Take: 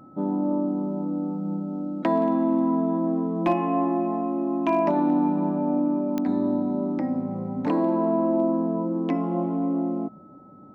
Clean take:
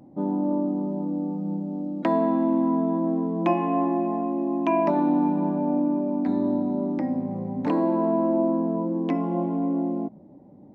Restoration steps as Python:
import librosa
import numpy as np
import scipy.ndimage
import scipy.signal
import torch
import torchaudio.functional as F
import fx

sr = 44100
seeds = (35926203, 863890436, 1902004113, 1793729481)

y = fx.fix_declip(x, sr, threshold_db=-13.0)
y = fx.fix_declick_ar(y, sr, threshold=10.0)
y = fx.notch(y, sr, hz=1300.0, q=30.0)